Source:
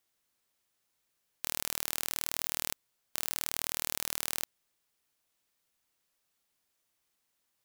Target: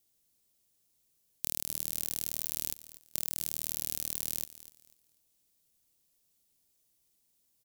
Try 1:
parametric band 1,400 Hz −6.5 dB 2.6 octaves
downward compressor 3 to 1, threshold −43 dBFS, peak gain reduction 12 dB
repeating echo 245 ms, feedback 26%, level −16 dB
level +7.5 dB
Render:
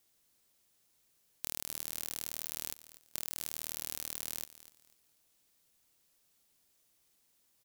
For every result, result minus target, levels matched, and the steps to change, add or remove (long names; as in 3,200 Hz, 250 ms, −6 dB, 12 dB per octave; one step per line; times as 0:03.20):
1,000 Hz band +6.5 dB; downward compressor: peak gain reduction +5.5 dB
change: parametric band 1,400 Hz −16.5 dB 2.6 octaves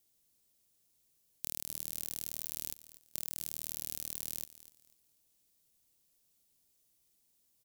downward compressor: peak gain reduction +5 dB
change: downward compressor 3 to 1, threshold −35.5 dBFS, peak gain reduction 6 dB